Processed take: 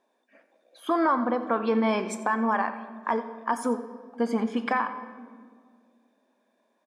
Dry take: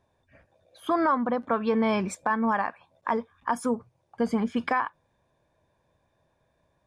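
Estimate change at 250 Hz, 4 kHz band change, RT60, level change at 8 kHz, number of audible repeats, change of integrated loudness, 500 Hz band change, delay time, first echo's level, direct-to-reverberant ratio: 0.0 dB, +0.5 dB, 2.0 s, +0.5 dB, 1, 0.0 dB, +0.5 dB, 90 ms, -17.0 dB, 9.0 dB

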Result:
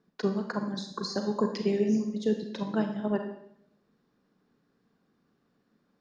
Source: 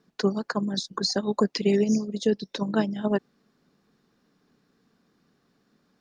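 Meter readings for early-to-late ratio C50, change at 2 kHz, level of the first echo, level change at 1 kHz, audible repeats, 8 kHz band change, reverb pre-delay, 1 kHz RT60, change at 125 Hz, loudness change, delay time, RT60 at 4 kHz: 6.5 dB, -5.5 dB, no echo, -4.0 dB, no echo, no reading, 32 ms, 0.70 s, -4.0 dB, -4.0 dB, no echo, 0.65 s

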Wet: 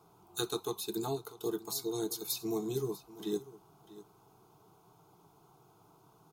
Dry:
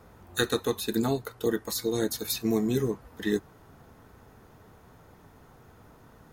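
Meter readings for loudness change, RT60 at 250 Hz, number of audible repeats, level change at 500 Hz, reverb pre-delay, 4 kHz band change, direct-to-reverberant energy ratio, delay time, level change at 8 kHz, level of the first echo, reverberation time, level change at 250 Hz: -7.5 dB, no reverb, 1, -7.5 dB, no reverb, -6.5 dB, no reverb, 644 ms, -4.5 dB, -17.5 dB, no reverb, -9.0 dB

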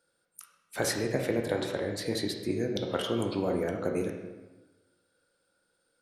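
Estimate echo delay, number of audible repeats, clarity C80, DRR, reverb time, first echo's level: no echo, no echo, 7.0 dB, 2.0 dB, 1.2 s, no echo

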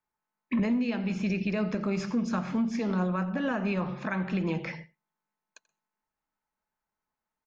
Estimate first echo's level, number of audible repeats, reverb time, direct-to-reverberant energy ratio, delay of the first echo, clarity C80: -21.0 dB, 1, no reverb, no reverb, 86 ms, no reverb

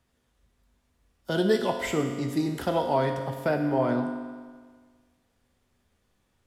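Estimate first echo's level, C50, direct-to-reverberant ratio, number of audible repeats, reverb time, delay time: no echo, 6.5 dB, 4.0 dB, no echo, 1.6 s, no echo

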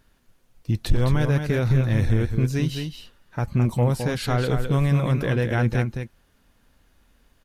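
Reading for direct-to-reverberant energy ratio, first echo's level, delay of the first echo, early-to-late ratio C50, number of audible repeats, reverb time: no reverb, -6.5 dB, 213 ms, no reverb, 1, no reverb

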